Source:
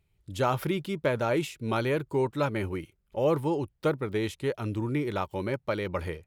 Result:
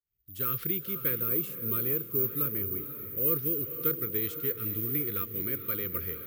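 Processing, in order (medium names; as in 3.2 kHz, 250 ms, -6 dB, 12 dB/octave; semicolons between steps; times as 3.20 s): fade-in on the opening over 0.59 s; careless resampling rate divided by 3×, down none, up zero stuff; Chebyshev band-stop 490–1200 Hz, order 3; echo that smears into a reverb 506 ms, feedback 46%, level -10 dB; time-frequency box 1.20–3.27 s, 1.3–9.3 kHz -6 dB; trim -6.5 dB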